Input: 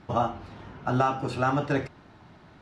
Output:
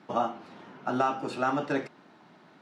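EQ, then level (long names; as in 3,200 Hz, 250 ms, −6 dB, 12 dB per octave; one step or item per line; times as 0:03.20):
high-pass filter 180 Hz 24 dB per octave
−2.0 dB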